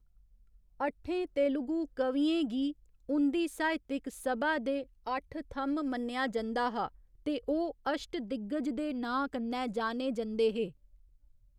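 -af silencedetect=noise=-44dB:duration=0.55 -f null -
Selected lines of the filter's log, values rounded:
silence_start: 0.00
silence_end: 0.80 | silence_duration: 0.80
silence_start: 10.70
silence_end: 11.58 | silence_duration: 0.88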